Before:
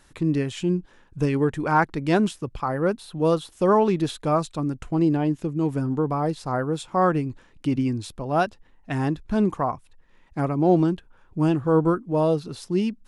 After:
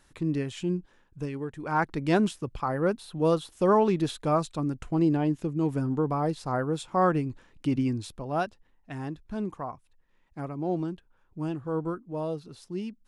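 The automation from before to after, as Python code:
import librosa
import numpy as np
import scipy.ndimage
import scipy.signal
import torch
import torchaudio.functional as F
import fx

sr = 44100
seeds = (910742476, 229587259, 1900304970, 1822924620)

y = fx.gain(x, sr, db=fx.line((0.75, -5.5), (1.5, -13.5), (1.91, -3.0), (7.93, -3.0), (8.95, -11.0)))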